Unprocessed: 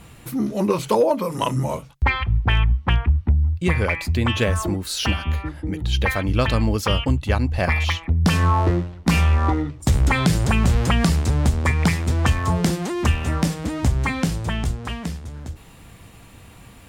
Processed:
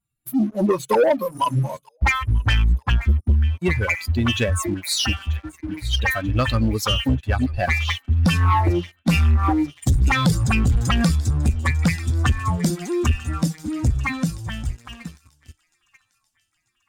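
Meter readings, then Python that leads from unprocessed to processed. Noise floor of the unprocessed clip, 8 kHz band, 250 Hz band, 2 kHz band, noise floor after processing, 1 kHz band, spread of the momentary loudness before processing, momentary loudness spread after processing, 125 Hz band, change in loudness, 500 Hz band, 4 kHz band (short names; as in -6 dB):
-45 dBFS, +1.0 dB, 0.0 dB, +0.5 dB, -71 dBFS, 0.0 dB, 8 LU, 8 LU, -0.5 dB, 0.0 dB, -0.5 dB, +1.5 dB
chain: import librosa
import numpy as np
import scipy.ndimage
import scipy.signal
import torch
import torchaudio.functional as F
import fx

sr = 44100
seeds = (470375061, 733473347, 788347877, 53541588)

y = fx.bin_expand(x, sr, power=2.0)
y = fx.echo_wet_highpass(y, sr, ms=938, feedback_pct=57, hz=1700.0, wet_db=-17.0)
y = fx.leveller(y, sr, passes=2)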